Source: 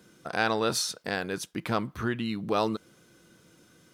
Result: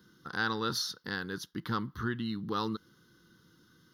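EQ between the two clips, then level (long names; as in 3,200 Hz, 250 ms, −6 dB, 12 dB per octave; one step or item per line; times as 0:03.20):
phaser with its sweep stopped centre 2,400 Hz, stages 6
−2.0 dB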